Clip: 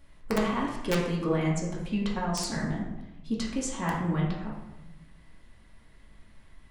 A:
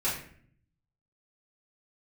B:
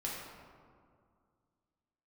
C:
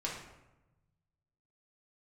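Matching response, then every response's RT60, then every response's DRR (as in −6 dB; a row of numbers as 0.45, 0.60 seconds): C; 0.55, 2.1, 1.0 seconds; −10.5, −5.0, −4.5 decibels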